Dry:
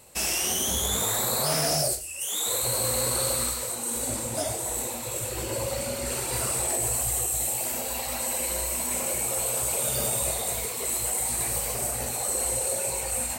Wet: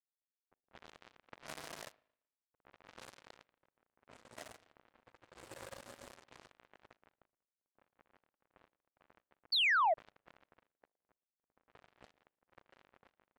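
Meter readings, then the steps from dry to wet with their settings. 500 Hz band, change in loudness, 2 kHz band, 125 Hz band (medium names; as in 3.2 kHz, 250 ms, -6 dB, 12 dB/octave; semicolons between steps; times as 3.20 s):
-18.5 dB, -7.5 dB, -4.5 dB, -33.0 dB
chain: dead-time distortion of 0.29 ms; level-controlled noise filter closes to 520 Hz, open at -30 dBFS; spring tank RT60 1.5 s, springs 38/57 ms, chirp 35 ms, DRR 6.5 dB; power-law waveshaper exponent 2; bass shelf 170 Hz -8 dB; painted sound fall, 9.52–9.94 s, 600–4700 Hz -23 dBFS; saturation -18.5 dBFS, distortion -25 dB; treble shelf 8.5 kHz -11.5 dB; trim -4.5 dB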